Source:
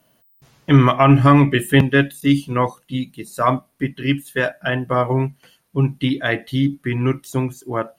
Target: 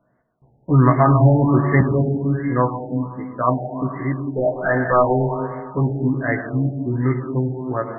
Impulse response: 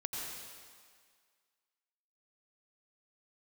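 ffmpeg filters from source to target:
-filter_complex "[0:a]asettb=1/sr,asplit=3[a][b][c];[a]atrim=end=4.234[d];[b]atrim=start=4.23:end=5.9,asetpts=PTS-STARTPTS,afade=t=in:d=0.004:c=qsin,afade=t=out:st=1.666:d=0.004:c=qsin,asplit=2[e][f];[f]highpass=f=720:p=1,volume=19dB,asoftclip=type=tanh:threshold=-6.5dB[g];[e][g]amix=inputs=2:normalize=0,lowpass=f=1.6k:p=1,volume=-6dB[h];[c]atrim=start=5.896[i];[d][h]acrossfade=d=0.004:c1=hsin:c2=qsin[j];[j][i]acrossfade=d=0.004:c1=qsin:c2=hsin,asplit=2[k][l];[1:a]atrim=start_sample=2205,lowpass=6.9k,adelay=16[m];[l][m]afir=irnorm=-1:irlink=0,volume=-3dB[n];[k][n]amix=inputs=2:normalize=0,afftfilt=real='re*lt(b*sr/1024,860*pow(2200/860,0.5+0.5*sin(2*PI*1.3*pts/sr)))':imag='im*lt(b*sr/1024,860*pow(2200/860,0.5+0.5*sin(2*PI*1.3*pts/sr)))':win_size=1024:overlap=0.75,volume=-3dB"

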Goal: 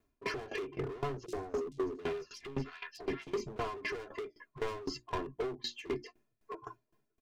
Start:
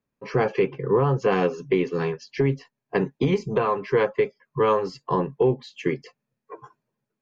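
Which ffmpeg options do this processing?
-filter_complex "[0:a]equalizer=f=130:w=0.45:g=-6.5,asoftclip=type=tanh:threshold=-28.5dB,aecho=1:1:2.9:0.81,asettb=1/sr,asplit=3[a][b][c];[a]atrim=end=1.264[d];[b]atrim=start=1.26:end=3.27,asetpts=PTS-STARTPTS,afade=t=in:d=0.004:c=qsin,afade=t=out:st=2.006:d=0.004:c=qsin,acrossover=split=1300|5000[e][f][g];[e]adelay=70[h];[f]adelay=730[i];[h][i][g]amix=inputs=3:normalize=0,atrim=end_sample=88641[j];[c]atrim=start=3.266[k];[d][j]acrossfade=d=0.004:c1=hsin:c2=qsin[l];[l][k]acrossfade=d=0.004:c1=qsin:c2=hsin,alimiter=level_in=4.5dB:limit=-24dB:level=0:latency=1:release=110,volume=-4.5dB,acompressor=threshold=-36dB:ratio=12,lowshelf=f=360:g=11.5,bandreject=f=60:t=h:w=6,bandreject=f=120:t=h:w=6,bandreject=f=180:t=h:w=6,bandreject=f=240:t=h:w=6,bandreject=f=300:t=h:w=6,bandreject=f=360:t=h:w=6,asoftclip=type=hard:threshold=-33.5dB,aeval=exprs='val(0)*pow(10,-20*if(lt(mod(3.9*n/s,1),2*abs(3.9)/1000),1-mod(3.9*n/s,1)/(2*abs(3.9)/1000),(mod(3.9*n/s,1)-2*abs(3.9)/1000)/(1-2*abs(3.9)/1000))/20)':c=same,volume=6dB"

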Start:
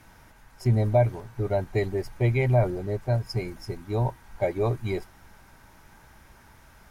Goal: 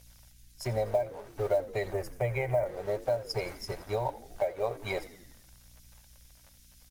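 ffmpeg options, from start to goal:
-filter_complex "[0:a]acrossover=split=120|3400[a][b][c];[b]aeval=exprs='sgn(val(0))*max(abs(val(0))-0.00316,0)':c=same[d];[a][d][c]amix=inputs=3:normalize=0,aeval=exprs='val(0)+0.00224*(sin(2*PI*60*n/s)+sin(2*PI*2*60*n/s)/2+sin(2*PI*3*60*n/s)/3+sin(2*PI*4*60*n/s)/4+sin(2*PI*5*60*n/s)/5)':c=same,lowshelf=f=400:t=q:w=3:g=-10.5,acompressor=threshold=-31dB:ratio=5,aphaser=in_gain=1:out_gain=1:delay=4.6:decay=0.26:speed=0.52:type=triangular,asplit=2[e][f];[f]asplit=6[g][h][i][j][k][l];[g]adelay=84,afreqshift=-66,volume=-17dB[m];[h]adelay=168,afreqshift=-132,volume=-21.2dB[n];[i]adelay=252,afreqshift=-198,volume=-25.3dB[o];[j]adelay=336,afreqshift=-264,volume=-29.5dB[p];[k]adelay=420,afreqshift=-330,volume=-33.6dB[q];[l]adelay=504,afreqshift=-396,volume=-37.8dB[r];[m][n][o][p][q][r]amix=inputs=6:normalize=0[s];[e][s]amix=inputs=2:normalize=0,acrusher=bits=8:mode=log:mix=0:aa=0.000001,asettb=1/sr,asplit=3[t][u][v];[t]atrim=end=1.934[w];[u]atrim=start=1.93:end=2.66,asetpts=PTS-STARTPTS,afade=t=in:d=0.004:c=qsin,afade=t=out:st=0.726:d=0.004:c=qsin,equalizer=f=125:t=o:w=1:g=5,equalizer=f=250:t=o:w=1:g=-7,equalizer=f=4k:t=o:w=1:g=-9[x];[v]atrim=start=2.656[y];[w][x]acrossfade=d=0.004:c1=hsin:c2=qsin[z];[z][y]acrossfade=d=0.004:c1=qsin:c2=hsin,volume=3.5dB"

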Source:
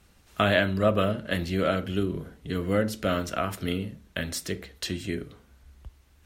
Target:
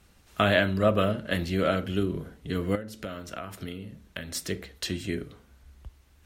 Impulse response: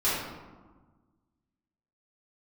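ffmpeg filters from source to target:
-filter_complex "[0:a]asettb=1/sr,asplit=3[a][b][c];[a]atrim=end=2.754[d];[b]atrim=start=2.75:end=4.35,asetpts=PTS-STARTPTS,afade=t=in:d=0.004:c=qsin,afade=t=out:st=1.596:d=0.004:c=qsin,acompressor=threshold=-33dB:ratio=10[e];[c]atrim=start=4.346[f];[d][e]acrossfade=d=0.004:c1=hsin:c2=qsin[g];[g][f]acrossfade=d=0.004:c1=qsin:c2=hsin"

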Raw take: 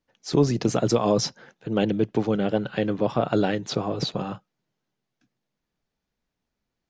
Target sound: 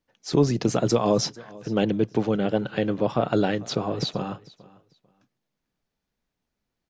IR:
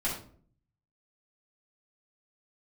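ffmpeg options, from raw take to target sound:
-af "aecho=1:1:445|890:0.0794|0.0175"

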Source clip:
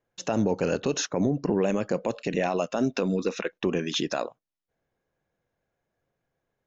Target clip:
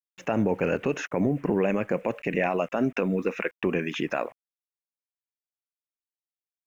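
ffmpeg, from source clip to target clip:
-af "acrusher=bits=8:mix=0:aa=0.000001,highshelf=f=3.1k:t=q:w=3:g=-10"

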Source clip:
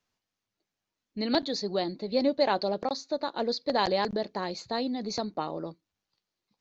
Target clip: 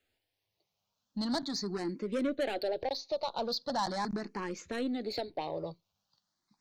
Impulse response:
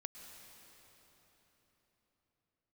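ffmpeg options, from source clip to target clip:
-filter_complex "[0:a]asplit=2[a][b];[b]acompressor=threshold=-39dB:ratio=6,volume=1dB[c];[a][c]amix=inputs=2:normalize=0,asoftclip=type=tanh:threshold=-23.5dB,asplit=2[d][e];[e]afreqshift=0.4[f];[d][f]amix=inputs=2:normalize=1,volume=-1dB"

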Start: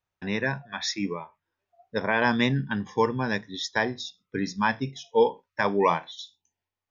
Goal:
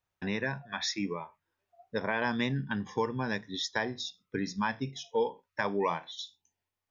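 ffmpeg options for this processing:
-af "acompressor=threshold=-32dB:ratio=2"

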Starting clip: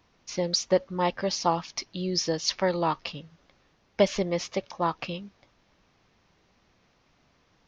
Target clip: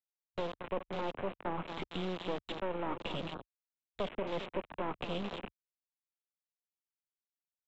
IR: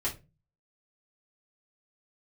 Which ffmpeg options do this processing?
-filter_complex "[0:a]agate=range=-13dB:threshold=-56dB:ratio=16:detection=peak,areverse,acompressor=threshold=-39dB:ratio=6,areverse,lowshelf=f=61:g=11.5,aecho=1:1:219|438|657|876:0.266|0.101|0.0384|0.0146,aresample=8000,acrusher=bits=5:dc=4:mix=0:aa=0.000001,aresample=44100,acrossover=split=210|610[a][b][c];[a]acompressor=threshold=-58dB:ratio=4[d];[b]acompressor=threshold=-51dB:ratio=4[e];[c]acompressor=threshold=-53dB:ratio=4[f];[d][e][f]amix=inputs=3:normalize=0,equalizer=f=1.9k:t=o:w=0.61:g=-6.5,afwtdn=0.000708,volume=14dB"

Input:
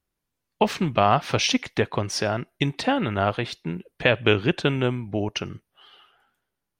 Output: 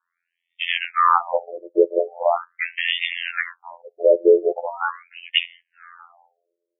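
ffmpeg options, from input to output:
-af "apsyclip=18.5dB,afftfilt=real='hypot(re,im)*cos(PI*b)':imag='0':win_size=2048:overlap=0.75,afftfilt=real='re*between(b*sr/1024,430*pow(2600/430,0.5+0.5*sin(2*PI*0.41*pts/sr))/1.41,430*pow(2600/430,0.5+0.5*sin(2*PI*0.41*pts/sr))*1.41)':imag='im*between(b*sr/1024,430*pow(2600/430,0.5+0.5*sin(2*PI*0.41*pts/sr))/1.41,430*pow(2600/430,0.5+0.5*sin(2*PI*0.41*pts/sr))*1.41)':win_size=1024:overlap=0.75,volume=-1.5dB"

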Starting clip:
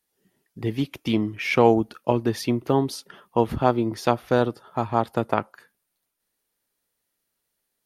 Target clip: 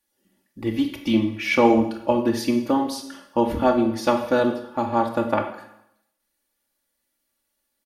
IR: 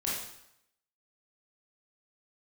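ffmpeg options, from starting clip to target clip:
-filter_complex "[0:a]aecho=1:1:3.5:0.87,asplit=2[a][b];[1:a]atrim=start_sample=2205[c];[b][c]afir=irnorm=-1:irlink=0,volume=-7.5dB[d];[a][d]amix=inputs=2:normalize=0,volume=-4dB"

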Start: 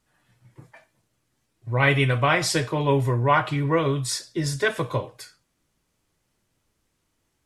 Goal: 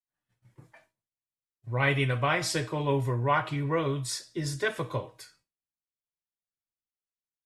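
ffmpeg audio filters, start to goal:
-af "bandreject=f=319.9:t=h:w=4,bandreject=f=639.8:t=h:w=4,bandreject=f=959.7:t=h:w=4,bandreject=f=1.2796k:t=h:w=4,bandreject=f=1.5995k:t=h:w=4,bandreject=f=1.9194k:t=h:w=4,bandreject=f=2.2393k:t=h:w=4,bandreject=f=2.5592k:t=h:w=4,bandreject=f=2.8791k:t=h:w=4,bandreject=f=3.199k:t=h:w=4,bandreject=f=3.5189k:t=h:w=4,bandreject=f=3.8388k:t=h:w=4,bandreject=f=4.1587k:t=h:w=4,bandreject=f=4.4786k:t=h:w=4,bandreject=f=4.7985k:t=h:w=4,bandreject=f=5.1184k:t=h:w=4,bandreject=f=5.4383k:t=h:w=4,bandreject=f=5.7582k:t=h:w=4,bandreject=f=6.0781k:t=h:w=4,bandreject=f=6.398k:t=h:w=4,bandreject=f=6.7179k:t=h:w=4,bandreject=f=7.0378k:t=h:w=4,bandreject=f=7.3577k:t=h:w=4,bandreject=f=7.6776k:t=h:w=4,bandreject=f=7.9975k:t=h:w=4,bandreject=f=8.3174k:t=h:w=4,bandreject=f=8.6373k:t=h:w=4,agate=range=-33dB:threshold=-54dB:ratio=3:detection=peak,volume=-6dB"

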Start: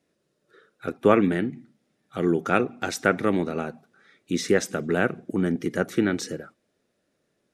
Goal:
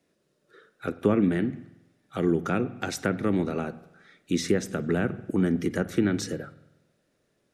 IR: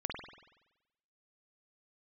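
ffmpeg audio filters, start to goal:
-filter_complex "[0:a]acrossover=split=330[a][b];[b]acompressor=threshold=-30dB:ratio=4[c];[a][c]amix=inputs=2:normalize=0,asplit=2[d][e];[e]asubboost=boost=6:cutoff=130[f];[1:a]atrim=start_sample=2205[g];[f][g]afir=irnorm=-1:irlink=0,volume=-15dB[h];[d][h]amix=inputs=2:normalize=0"

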